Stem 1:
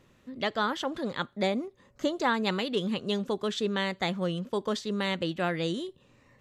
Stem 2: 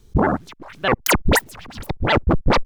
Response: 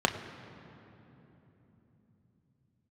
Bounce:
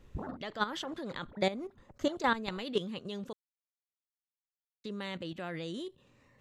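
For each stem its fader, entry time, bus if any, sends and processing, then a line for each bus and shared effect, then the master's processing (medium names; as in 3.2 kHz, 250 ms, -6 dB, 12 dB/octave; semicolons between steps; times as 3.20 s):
0.0 dB, 0.00 s, muted 3.33–4.84 s, no send, level held to a coarse grid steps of 13 dB
-7.0 dB, 0.00 s, no send, low-pass 1.6 kHz 24 dB/octave; compression 4:1, threshold -28 dBFS, peak gain reduction 14.5 dB; auto duck -19 dB, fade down 0.90 s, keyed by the first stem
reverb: none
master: none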